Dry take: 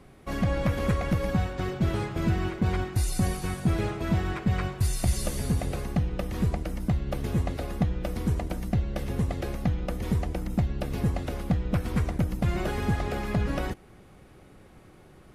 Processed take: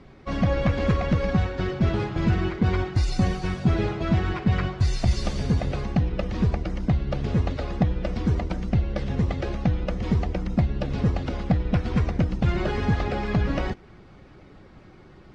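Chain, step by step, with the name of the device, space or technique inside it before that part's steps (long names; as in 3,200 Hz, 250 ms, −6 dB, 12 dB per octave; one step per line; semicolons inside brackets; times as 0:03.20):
clip after many re-uploads (low-pass filter 5,700 Hz 24 dB per octave; spectral magnitudes quantised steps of 15 dB)
level +4 dB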